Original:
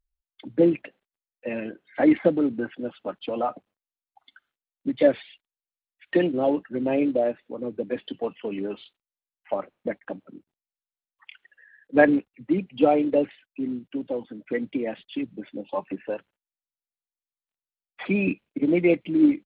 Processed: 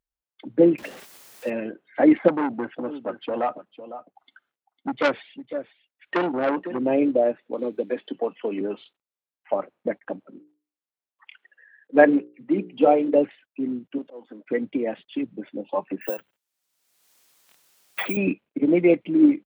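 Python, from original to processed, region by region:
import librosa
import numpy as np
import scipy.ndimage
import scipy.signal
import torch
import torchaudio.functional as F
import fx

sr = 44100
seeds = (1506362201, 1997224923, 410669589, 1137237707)

y = fx.chain(x, sr, fx.zero_step(step_db=-39.0),
    fx.high_shelf(hz=2600.0, db=6.5), at=(0.78, 1.5))
y = fx.chain(y, sr, fx.echo_single(ms=504, db=-14.0),
    fx.transformer_sat(knee_hz=2300.0), at=(2.28, 6.79))
y = fx.chain(y, sr, fx.highpass(hz=220.0, slope=12),
    fx.notch(hz=2800.0, q=22.0),
    fx.band_squash(depth_pct=70), at=(7.53, 8.61))
y = fx.chain(y, sr, fx.highpass(hz=160.0, slope=12),
    fx.hum_notches(base_hz=60, count=9), at=(10.23, 13.14))
y = fx.chain(y, sr, fx.halfwave_gain(db=-3.0),
    fx.highpass(hz=280.0, slope=12),
    fx.auto_swell(attack_ms=228.0), at=(13.98, 14.48))
y = fx.chain(y, sr, fx.high_shelf(hz=2400.0, db=11.5),
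    fx.resample_bad(factor=2, down='filtered', up='zero_stuff'),
    fx.band_squash(depth_pct=100), at=(16.01, 18.17))
y = fx.highpass(y, sr, hz=240.0, slope=6)
y = fx.high_shelf(y, sr, hz=2000.0, db=-9.5)
y = y * librosa.db_to_amplitude(4.5)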